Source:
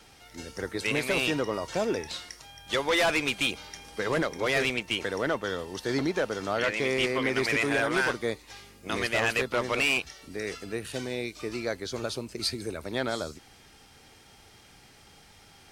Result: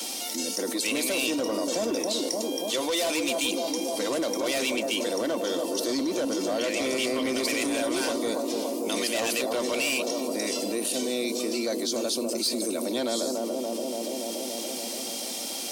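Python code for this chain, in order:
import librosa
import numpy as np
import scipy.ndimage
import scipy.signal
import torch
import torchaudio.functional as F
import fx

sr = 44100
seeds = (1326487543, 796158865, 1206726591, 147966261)

p1 = scipy.signal.sosfilt(scipy.signal.butter(8, 220.0, 'highpass', fs=sr, output='sos'), x)
p2 = fx.peak_eq(p1, sr, hz=1600.0, db=-14.5, octaves=1.1)
p3 = p2 + fx.echo_bbd(p2, sr, ms=286, stages=2048, feedback_pct=66, wet_db=-7.0, dry=0)
p4 = 10.0 ** (-23.5 / 20.0) * np.tanh(p3 / 10.0 ** (-23.5 / 20.0))
p5 = fx.high_shelf(p4, sr, hz=4300.0, db=10.5)
p6 = fx.notch_comb(p5, sr, f0_hz=420.0)
y = fx.env_flatten(p6, sr, amount_pct=70)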